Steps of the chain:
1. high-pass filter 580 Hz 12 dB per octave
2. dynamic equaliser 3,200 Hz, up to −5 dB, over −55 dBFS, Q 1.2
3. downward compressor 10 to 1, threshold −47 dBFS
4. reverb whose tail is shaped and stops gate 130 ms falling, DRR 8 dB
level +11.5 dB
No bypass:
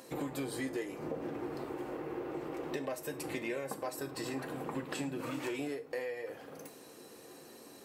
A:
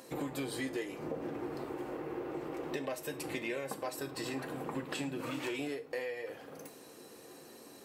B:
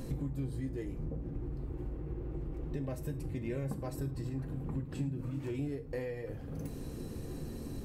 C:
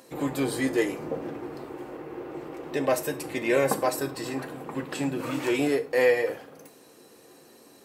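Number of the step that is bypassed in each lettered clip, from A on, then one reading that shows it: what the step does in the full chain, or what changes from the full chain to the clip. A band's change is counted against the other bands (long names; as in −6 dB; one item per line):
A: 2, 4 kHz band +3.0 dB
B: 1, 125 Hz band +21.5 dB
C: 3, average gain reduction 6.5 dB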